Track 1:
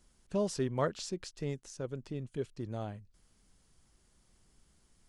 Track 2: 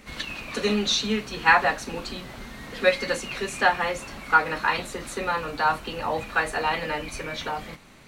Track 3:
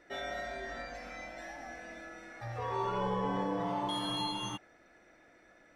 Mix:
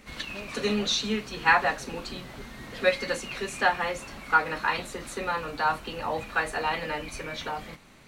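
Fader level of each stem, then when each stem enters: -12.0 dB, -3.0 dB, off; 0.00 s, 0.00 s, off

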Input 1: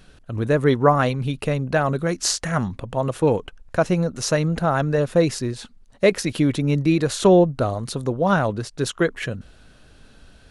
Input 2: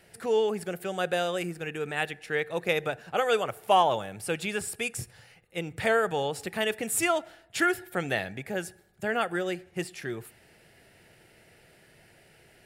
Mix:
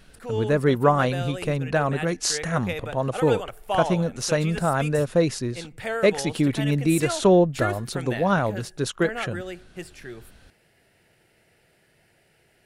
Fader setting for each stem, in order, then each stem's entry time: -2.5, -4.5 dB; 0.00, 0.00 s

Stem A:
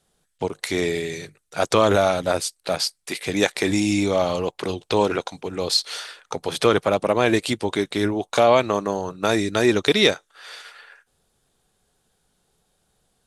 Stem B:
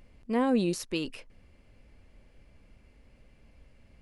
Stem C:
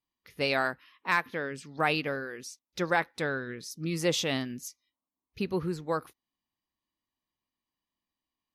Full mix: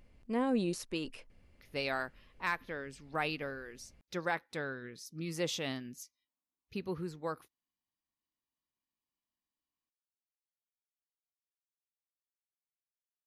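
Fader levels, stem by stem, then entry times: off, -5.5 dB, -7.5 dB; off, 0.00 s, 1.35 s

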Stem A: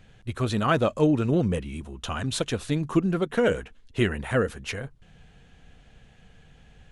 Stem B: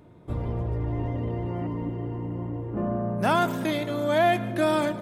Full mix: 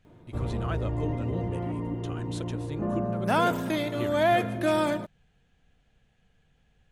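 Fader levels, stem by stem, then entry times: -13.0, -1.5 dB; 0.00, 0.05 s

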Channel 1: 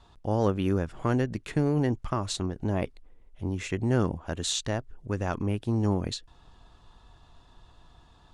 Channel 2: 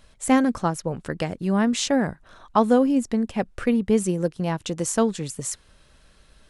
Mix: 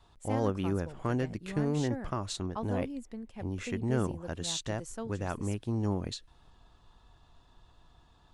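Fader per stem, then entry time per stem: -5.0, -19.0 dB; 0.00, 0.00 s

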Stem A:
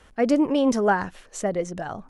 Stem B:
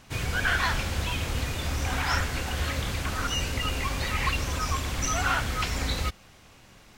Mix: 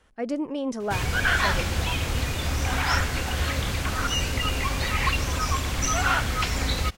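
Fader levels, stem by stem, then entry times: -8.5, +3.0 dB; 0.00, 0.80 s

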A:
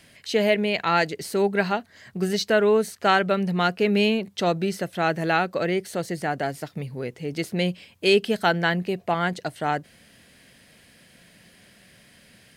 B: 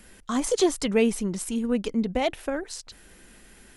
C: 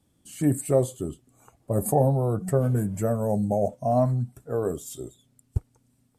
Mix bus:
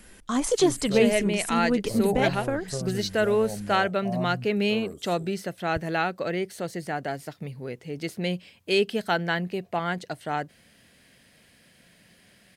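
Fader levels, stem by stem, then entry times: -4.0, +0.5, -10.5 dB; 0.65, 0.00, 0.20 s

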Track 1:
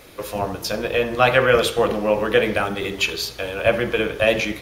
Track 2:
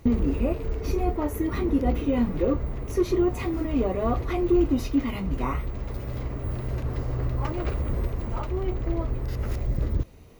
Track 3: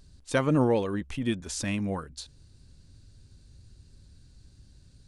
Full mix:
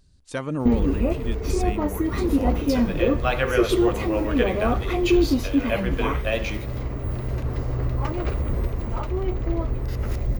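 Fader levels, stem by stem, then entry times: -8.0, +2.5, -4.0 dB; 2.05, 0.60, 0.00 s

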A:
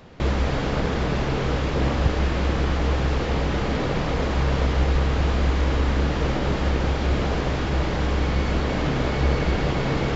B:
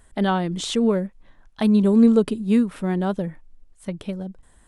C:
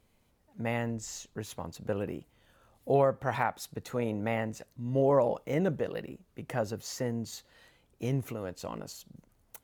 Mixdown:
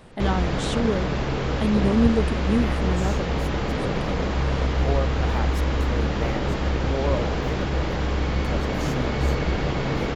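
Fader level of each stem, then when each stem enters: -1.5, -5.0, -2.5 dB; 0.00, 0.00, 1.95 s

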